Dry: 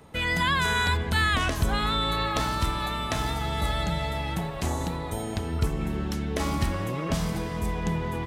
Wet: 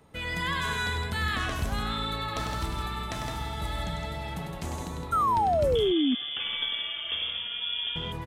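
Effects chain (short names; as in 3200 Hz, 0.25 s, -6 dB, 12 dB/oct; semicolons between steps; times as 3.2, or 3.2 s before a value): 5.75–7.96 inverted band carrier 3400 Hz; loudspeakers at several distances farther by 34 m -6 dB, 56 m -6 dB; 5.12–6.15 painted sound fall 240–1400 Hz -17 dBFS; gain -7 dB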